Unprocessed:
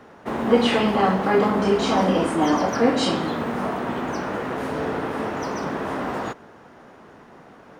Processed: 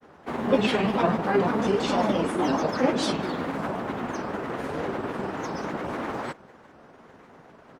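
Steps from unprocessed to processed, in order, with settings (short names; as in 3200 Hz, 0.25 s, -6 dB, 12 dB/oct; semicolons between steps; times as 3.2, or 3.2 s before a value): grains, spray 11 ms, pitch spread up and down by 3 st; harmoniser -7 st -15 dB; gain -3 dB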